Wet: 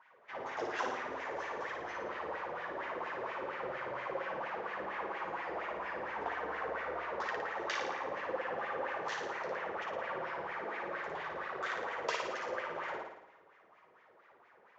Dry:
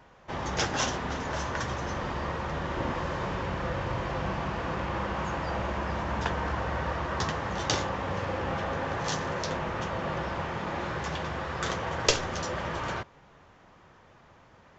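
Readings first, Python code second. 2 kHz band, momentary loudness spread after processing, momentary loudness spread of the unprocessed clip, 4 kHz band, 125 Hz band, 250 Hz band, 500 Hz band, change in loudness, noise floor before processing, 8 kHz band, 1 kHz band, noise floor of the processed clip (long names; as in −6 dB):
−4.5 dB, 4 LU, 4 LU, −13.0 dB, −26.0 dB, −14.5 dB, −5.5 dB, −7.5 dB, −57 dBFS, can't be measured, −6.0 dB, −64 dBFS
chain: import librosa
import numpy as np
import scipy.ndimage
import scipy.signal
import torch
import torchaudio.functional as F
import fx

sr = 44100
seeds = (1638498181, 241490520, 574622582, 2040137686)

y = fx.high_shelf(x, sr, hz=4000.0, db=7.0)
y = fx.wah_lfo(y, sr, hz=4.3, low_hz=400.0, high_hz=2200.0, q=3.9)
y = fx.low_shelf(y, sr, hz=180.0, db=-3.0)
y = fx.room_flutter(y, sr, wall_m=9.6, rt60_s=0.81)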